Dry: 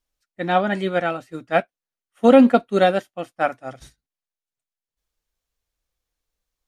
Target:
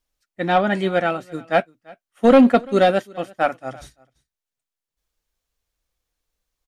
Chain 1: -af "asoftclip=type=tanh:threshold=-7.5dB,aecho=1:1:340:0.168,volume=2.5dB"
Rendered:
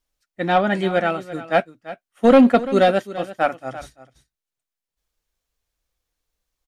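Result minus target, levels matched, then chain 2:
echo-to-direct +9 dB
-af "asoftclip=type=tanh:threshold=-7.5dB,aecho=1:1:340:0.0596,volume=2.5dB"

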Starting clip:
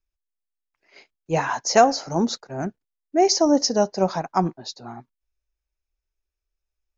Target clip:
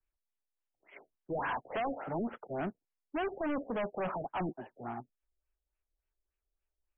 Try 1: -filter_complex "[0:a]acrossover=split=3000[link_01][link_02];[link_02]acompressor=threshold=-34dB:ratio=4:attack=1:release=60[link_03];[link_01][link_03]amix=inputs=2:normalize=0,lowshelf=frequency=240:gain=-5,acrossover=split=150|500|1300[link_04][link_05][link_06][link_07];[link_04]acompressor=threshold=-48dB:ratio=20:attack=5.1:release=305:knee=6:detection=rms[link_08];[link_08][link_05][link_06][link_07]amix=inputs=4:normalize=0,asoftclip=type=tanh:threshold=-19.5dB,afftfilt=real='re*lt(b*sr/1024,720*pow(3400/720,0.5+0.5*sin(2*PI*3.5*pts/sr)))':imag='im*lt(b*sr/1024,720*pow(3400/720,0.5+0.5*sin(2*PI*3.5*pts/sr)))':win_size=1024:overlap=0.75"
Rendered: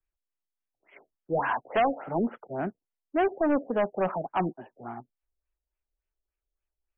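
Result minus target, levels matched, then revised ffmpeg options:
soft clipping: distortion −6 dB
-filter_complex "[0:a]acrossover=split=3000[link_01][link_02];[link_02]acompressor=threshold=-34dB:ratio=4:attack=1:release=60[link_03];[link_01][link_03]amix=inputs=2:normalize=0,lowshelf=frequency=240:gain=-5,acrossover=split=150|500|1300[link_04][link_05][link_06][link_07];[link_04]acompressor=threshold=-48dB:ratio=20:attack=5.1:release=305:knee=6:detection=rms[link_08];[link_08][link_05][link_06][link_07]amix=inputs=4:normalize=0,asoftclip=type=tanh:threshold=-31.5dB,afftfilt=real='re*lt(b*sr/1024,720*pow(3400/720,0.5+0.5*sin(2*PI*3.5*pts/sr)))':imag='im*lt(b*sr/1024,720*pow(3400/720,0.5+0.5*sin(2*PI*3.5*pts/sr)))':win_size=1024:overlap=0.75"

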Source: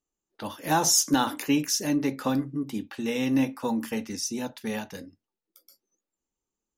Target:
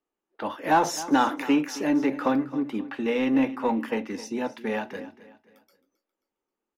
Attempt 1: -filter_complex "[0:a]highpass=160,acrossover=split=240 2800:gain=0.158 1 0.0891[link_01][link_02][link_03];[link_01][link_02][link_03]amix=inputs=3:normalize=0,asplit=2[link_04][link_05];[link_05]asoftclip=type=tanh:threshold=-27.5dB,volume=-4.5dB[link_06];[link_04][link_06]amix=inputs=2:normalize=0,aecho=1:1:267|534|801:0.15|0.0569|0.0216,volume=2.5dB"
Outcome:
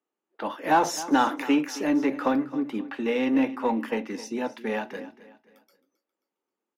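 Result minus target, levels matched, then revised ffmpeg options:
125 Hz band −3.0 dB
-filter_complex "[0:a]acrossover=split=240 2800:gain=0.158 1 0.0891[link_01][link_02][link_03];[link_01][link_02][link_03]amix=inputs=3:normalize=0,asplit=2[link_04][link_05];[link_05]asoftclip=type=tanh:threshold=-27.5dB,volume=-4.5dB[link_06];[link_04][link_06]amix=inputs=2:normalize=0,aecho=1:1:267|534|801:0.15|0.0569|0.0216,volume=2.5dB"

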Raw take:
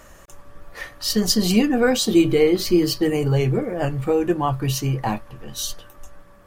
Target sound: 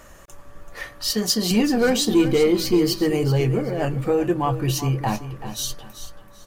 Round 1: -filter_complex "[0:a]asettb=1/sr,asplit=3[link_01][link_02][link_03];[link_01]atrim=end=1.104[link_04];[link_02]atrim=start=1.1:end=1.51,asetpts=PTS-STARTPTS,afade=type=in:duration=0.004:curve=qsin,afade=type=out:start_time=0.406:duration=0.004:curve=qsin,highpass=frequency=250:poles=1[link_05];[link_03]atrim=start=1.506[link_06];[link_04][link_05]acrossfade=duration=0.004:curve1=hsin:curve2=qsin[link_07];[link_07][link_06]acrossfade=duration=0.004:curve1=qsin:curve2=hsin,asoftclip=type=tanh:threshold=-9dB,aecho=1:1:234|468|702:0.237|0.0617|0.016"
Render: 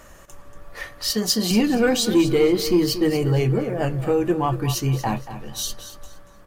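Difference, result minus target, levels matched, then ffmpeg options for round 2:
echo 149 ms early
-filter_complex "[0:a]asettb=1/sr,asplit=3[link_01][link_02][link_03];[link_01]atrim=end=1.104[link_04];[link_02]atrim=start=1.1:end=1.51,asetpts=PTS-STARTPTS,afade=type=in:duration=0.004:curve=qsin,afade=type=out:start_time=0.406:duration=0.004:curve=qsin,highpass=frequency=250:poles=1[link_05];[link_03]atrim=start=1.506[link_06];[link_04][link_05]acrossfade=duration=0.004:curve1=hsin:curve2=qsin[link_07];[link_07][link_06]acrossfade=duration=0.004:curve1=qsin:curve2=hsin,asoftclip=type=tanh:threshold=-9dB,aecho=1:1:383|766|1149:0.237|0.0617|0.016"

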